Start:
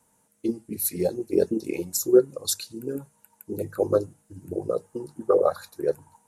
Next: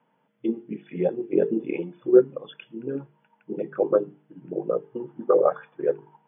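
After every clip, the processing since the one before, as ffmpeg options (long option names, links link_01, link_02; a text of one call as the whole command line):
ffmpeg -i in.wav -af "bandreject=frequency=50:width_type=h:width=6,bandreject=frequency=100:width_type=h:width=6,bandreject=frequency=150:width_type=h:width=6,bandreject=frequency=200:width_type=h:width=6,bandreject=frequency=250:width_type=h:width=6,bandreject=frequency=300:width_type=h:width=6,bandreject=frequency=350:width_type=h:width=6,bandreject=frequency=400:width_type=h:width=6,bandreject=frequency=450:width_type=h:width=6,afftfilt=real='re*between(b*sr/4096,120,3500)':imag='im*between(b*sr/4096,120,3500)':win_size=4096:overlap=0.75,volume=1.5dB" out.wav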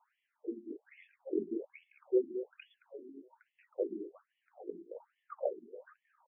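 ffmpeg -i in.wav -filter_complex "[0:a]acrossover=split=160[link_01][link_02];[link_02]acompressor=threshold=-49dB:ratio=1.5[link_03];[link_01][link_03]amix=inputs=2:normalize=0,asplit=2[link_04][link_05];[link_05]adelay=219,lowpass=frequency=2200:poles=1,volume=-11dB,asplit=2[link_06][link_07];[link_07]adelay=219,lowpass=frequency=2200:poles=1,volume=0.5,asplit=2[link_08][link_09];[link_09]adelay=219,lowpass=frequency=2200:poles=1,volume=0.5,asplit=2[link_10][link_11];[link_11]adelay=219,lowpass=frequency=2200:poles=1,volume=0.5,asplit=2[link_12][link_13];[link_13]adelay=219,lowpass=frequency=2200:poles=1,volume=0.5[link_14];[link_06][link_08][link_10][link_12][link_14]amix=inputs=5:normalize=0[link_15];[link_04][link_15]amix=inputs=2:normalize=0,afftfilt=real='re*between(b*sr/1024,270*pow(2500/270,0.5+0.5*sin(2*PI*1.2*pts/sr))/1.41,270*pow(2500/270,0.5+0.5*sin(2*PI*1.2*pts/sr))*1.41)':imag='im*between(b*sr/1024,270*pow(2500/270,0.5+0.5*sin(2*PI*1.2*pts/sr))/1.41,270*pow(2500/270,0.5+0.5*sin(2*PI*1.2*pts/sr))*1.41)':win_size=1024:overlap=0.75,volume=-1dB" out.wav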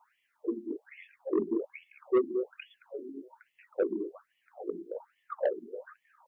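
ffmpeg -i in.wav -af "asoftclip=type=tanh:threshold=-27dB,volume=8dB" out.wav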